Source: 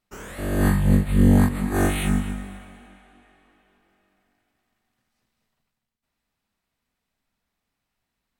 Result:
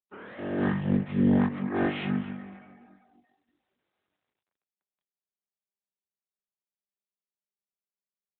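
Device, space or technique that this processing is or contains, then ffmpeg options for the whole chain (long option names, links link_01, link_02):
mobile call with aggressive noise cancelling: -af "highpass=180,afftdn=noise_reduction=25:noise_floor=-49,volume=-3dB" -ar 8000 -c:a libopencore_amrnb -b:a 12200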